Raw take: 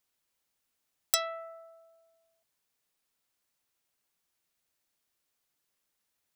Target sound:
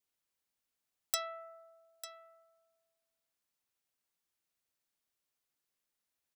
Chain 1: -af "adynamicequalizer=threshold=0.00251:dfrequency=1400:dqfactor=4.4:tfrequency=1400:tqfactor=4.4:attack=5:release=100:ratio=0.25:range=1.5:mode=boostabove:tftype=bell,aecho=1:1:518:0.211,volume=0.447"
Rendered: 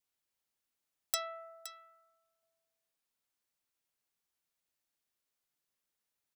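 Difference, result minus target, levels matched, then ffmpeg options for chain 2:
echo 380 ms early
-af "adynamicequalizer=threshold=0.00251:dfrequency=1400:dqfactor=4.4:tfrequency=1400:tqfactor=4.4:attack=5:release=100:ratio=0.25:range=1.5:mode=boostabove:tftype=bell,aecho=1:1:898:0.211,volume=0.447"

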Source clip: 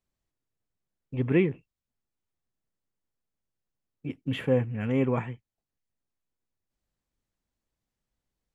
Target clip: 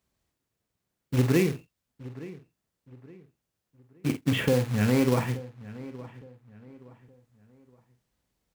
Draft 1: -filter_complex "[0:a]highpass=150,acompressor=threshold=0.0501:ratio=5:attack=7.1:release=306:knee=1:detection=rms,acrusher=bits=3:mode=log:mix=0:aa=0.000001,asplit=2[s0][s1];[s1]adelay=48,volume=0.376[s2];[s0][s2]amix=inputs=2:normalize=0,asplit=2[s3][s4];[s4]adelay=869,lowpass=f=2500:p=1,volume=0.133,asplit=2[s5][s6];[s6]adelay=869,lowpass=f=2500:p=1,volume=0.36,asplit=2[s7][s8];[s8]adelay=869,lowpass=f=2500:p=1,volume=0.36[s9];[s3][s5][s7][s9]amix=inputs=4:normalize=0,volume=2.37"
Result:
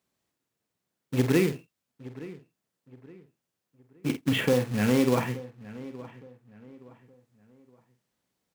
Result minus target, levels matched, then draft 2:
125 Hz band -3.0 dB
-filter_complex "[0:a]highpass=48,acompressor=threshold=0.0501:ratio=5:attack=7.1:release=306:knee=1:detection=rms,acrusher=bits=3:mode=log:mix=0:aa=0.000001,asplit=2[s0][s1];[s1]adelay=48,volume=0.376[s2];[s0][s2]amix=inputs=2:normalize=0,asplit=2[s3][s4];[s4]adelay=869,lowpass=f=2500:p=1,volume=0.133,asplit=2[s5][s6];[s6]adelay=869,lowpass=f=2500:p=1,volume=0.36,asplit=2[s7][s8];[s8]adelay=869,lowpass=f=2500:p=1,volume=0.36[s9];[s3][s5][s7][s9]amix=inputs=4:normalize=0,volume=2.37"

